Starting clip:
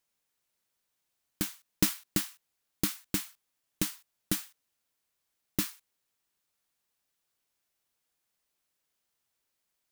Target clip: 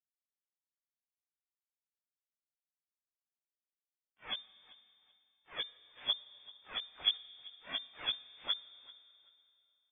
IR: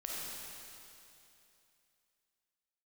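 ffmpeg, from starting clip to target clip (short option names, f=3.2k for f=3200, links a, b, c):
-filter_complex "[0:a]areverse,acrossover=split=210|490|1300[a][b][c][d];[a]acompressor=threshold=-37dB:ratio=4[e];[b]acompressor=threshold=-38dB:ratio=4[f];[c]acompressor=threshold=-50dB:ratio=4[g];[d]acompressor=threshold=-36dB:ratio=4[h];[e][f][g][h]amix=inputs=4:normalize=0,aresample=16000,aeval=exprs='sgn(val(0))*max(abs(val(0))-0.00188,0)':c=same,aresample=44100,aphaser=in_gain=1:out_gain=1:delay=2.4:decay=0.56:speed=0.84:type=sinusoidal,asplit=2[i][j];[j]adelay=18,volume=-7.5dB[k];[i][k]amix=inputs=2:normalize=0,aecho=1:1:387|774:0.0841|0.0185,asplit=2[l][m];[1:a]atrim=start_sample=2205,adelay=6[n];[m][n]afir=irnorm=-1:irlink=0,volume=-20dB[o];[l][o]amix=inputs=2:normalize=0,lowpass=f=3.1k:t=q:w=0.5098,lowpass=f=3.1k:t=q:w=0.6013,lowpass=f=3.1k:t=q:w=0.9,lowpass=f=3.1k:t=q:w=2.563,afreqshift=-3600"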